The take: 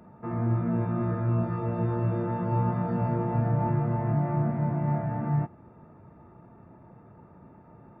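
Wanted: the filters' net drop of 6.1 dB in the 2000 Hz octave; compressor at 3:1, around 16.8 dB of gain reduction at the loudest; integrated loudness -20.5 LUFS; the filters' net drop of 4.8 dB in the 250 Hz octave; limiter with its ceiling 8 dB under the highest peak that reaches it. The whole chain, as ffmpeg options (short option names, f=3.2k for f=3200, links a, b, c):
-af "equalizer=f=250:t=o:g=-8,equalizer=f=2k:t=o:g=-8,acompressor=threshold=-48dB:ratio=3,volume=29.5dB,alimiter=limit=-11.5dB:level=0:latency=1"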